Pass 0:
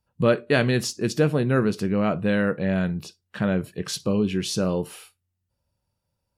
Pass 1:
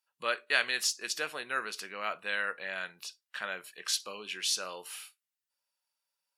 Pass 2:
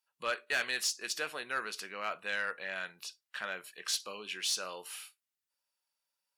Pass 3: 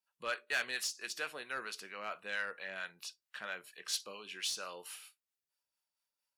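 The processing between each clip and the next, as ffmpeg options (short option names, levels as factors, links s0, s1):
-af "highpass=1400"
-af "asoftclip=type=tanh:threshold=0.0841,volume=0.891"
-filter_complex "[0:a]acrossover=split=620[s0][s1];[s0]aeval=exprs='val(0)*(1-0.5/2+0.5/2*cos(2*PI*4.4*n/s))':c=same[s2];[s1]aeval=exprs='val(0)*(1-0.5/2-0.5/2*cos(2*PI*4.4*n/s))':c=same[s3];[s2][s3]amix=inputs=2:normalize=0,volume=0.841"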